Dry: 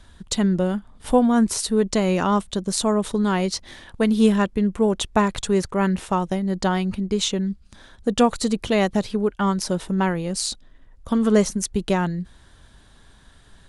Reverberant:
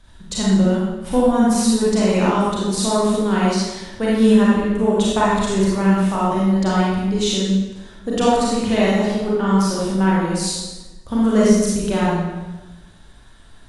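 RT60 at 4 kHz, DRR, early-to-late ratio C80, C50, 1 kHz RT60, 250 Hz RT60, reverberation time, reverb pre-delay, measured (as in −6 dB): 0.90 s, −7.5 dB, 1.0 dB, −3.0 dB, 1.1 s, 1.2 s, 1.2 s, 30 ms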